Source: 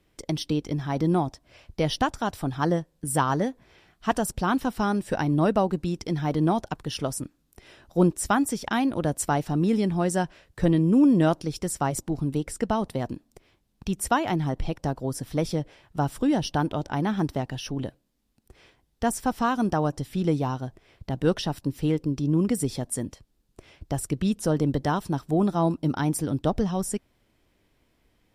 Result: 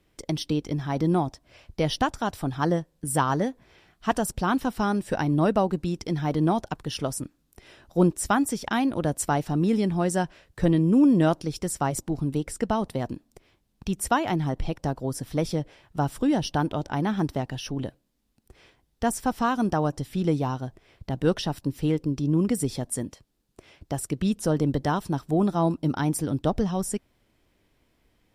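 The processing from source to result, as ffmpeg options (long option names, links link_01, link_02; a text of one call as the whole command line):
ffmpeg -i in.wav -filter_complex "[0:a]asettb=1/sr,asplit=3[link_01][link_02][link_03];[link_01]atrim=end=23.034[link_04];[link_02]atrim=start=23.03:end=24.21,asetpts=PTS-STARTPTS,afade=type=in:duration=0.004:curve=qsin,afade=type=out:start_time=1.176:duration=0.004:curve=qsin,lowshelf=frequency=82:gain=-9[link_05];[link_03]atrim=start=24.206[link_06];[link_04][link_05]acrossfade=duration=0.004:curve1=hsin:curve2=qsin[link_07];[link_07][link_06]acrossfade=duration=0.004:curve1=qsin:curve2=hsin" out.wav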